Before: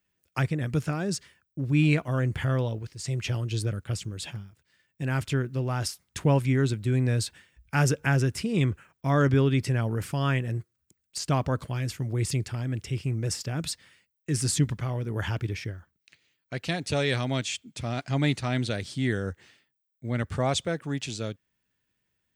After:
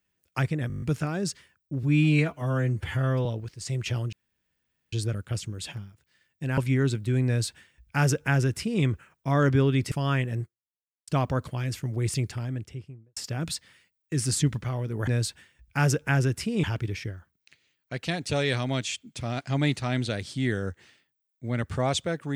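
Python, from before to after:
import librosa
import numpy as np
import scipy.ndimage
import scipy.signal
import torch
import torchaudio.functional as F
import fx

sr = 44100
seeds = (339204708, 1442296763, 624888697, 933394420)

y = fx.studio_fade_out(x, sr, start_s=12.44, length_s=0.89)
y = fx.edit(y, sr, fx.stutter(start_s=0.68, slice_s=0.02, count=8),
    fx.stretch_span(start_s=1.69, length_s=0.95, factor=1.5),
    fx.insert_room_tone(at_s=3.51, length_s=0.8),
    fx.cut(start_s=5.16, length_s=1.2),
    fx.duplicate(start_s=7.05, length_s=1.56, to_s=15.24),
    fx.cut(start_s=9.7, length_s=0.38),
    fx.fade_out_span(start_s=10.59, length_s=0.65, curve='exp'), tone=tone)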